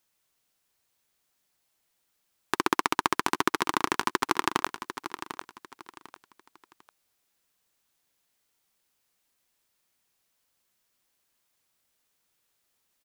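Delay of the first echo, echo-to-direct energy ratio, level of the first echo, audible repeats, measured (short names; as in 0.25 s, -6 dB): 0.748 s, -10.5 dB, -11.0 dB, 3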